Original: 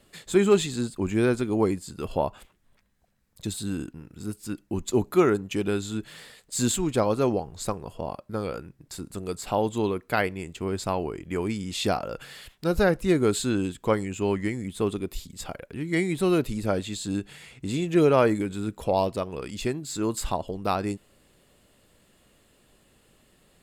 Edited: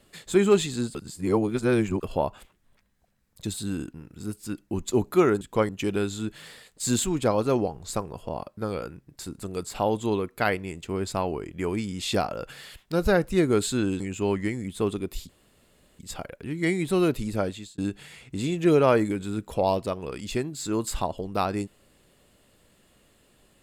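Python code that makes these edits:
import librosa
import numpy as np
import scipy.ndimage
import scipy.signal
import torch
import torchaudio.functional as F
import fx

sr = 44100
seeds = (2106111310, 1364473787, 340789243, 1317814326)

y = fx.edit(x, sr, fx.reverse_span(start_s=0.95, length_s=1.08),
    fx.move(start_s=13.72, length_s=0.28, to_s=5.41),
    fx.insert_room_tone(at_s=15.29, length_s=0.7),
    fx.fade_out_span(start_s=16.54, length_s=0.54, curve='qsin'), tone=tone)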